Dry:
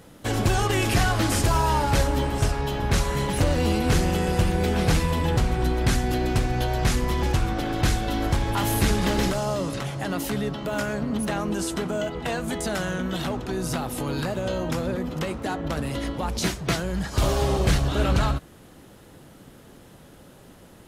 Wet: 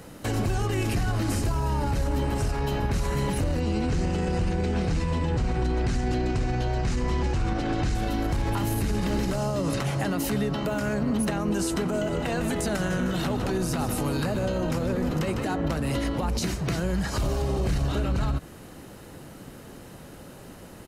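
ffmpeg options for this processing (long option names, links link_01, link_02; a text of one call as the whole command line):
ffmpeg -i in.wav -filter_complex "[0:a]asettb=1/sr,asplit=3[link_01][link_02][link_03];[link_01]atrim=end=3.604[link_04];[link_02]atrim=start=3.6:end=7.95,asetpts=PTS-STARTPTS,afade=type=in:duration=0.004:curve=qsin,afade=type=out:start_time=4.346:duration=0.004:curve=qsin,lowpass=frequency=8200:width=0.5412,lowpass=frequency=8200:width=1.3066[link_05];[link_03]atrim=start=7.946[link_06];[link_04][link_05]acrossfade=duration=0.004:curve1=hsin:curve2=qsin[link_07];[link_07][link_06]acrossfade=duration=0.004:curve1=qsin:curve2=hsin,asplit=3[link_08][link_09][link_10];[link_08]afade=type=out:start_time=11.93:duration=0.02[link_11];[link_09]asplit=6[link_12][link_13][link_14][link_15][link_16][link_17];[link_13]adelay=152,afreqshift=-45,volume=-10.5dB[link_18];[link_14]adelay=304,afreqshift=-90,volume=-17.2dB[link_19];[link_15]adelay=456,afreqshift=-135,volume=-24dB[link_20];[link_16]adelay=608,afreqshift=-180,volume=-30.7dB[link_21];[link_17]adelay=760,afreqshift=-225,volume=-37.5dB[link_22];[link_12][link_18][link_19][link_20][link_21][link_22]amix=inputs=6:normalize=0,afade=type=in:start_time=11.93:duration=0.02,afade=type=out:start_time=15.46:duration=0.02[link_23];[link_10]afade=type=in:start_time=15.46:duration=0.02[link_24];[link_11][link_23][link_24]amix=inputs=3:normalize=0,bandreject=frequency=3400:width=11,acrossover=split=390[link_25][link_26];[link_26]acompressor=threshold=-31dB:ratio=6[link_27];[link_25][link_27]amix=inputs=2:normalize=0,alimiter=limit=-22.5dB:level=0:latency=1:release=69,volume=4.5dB" out.wav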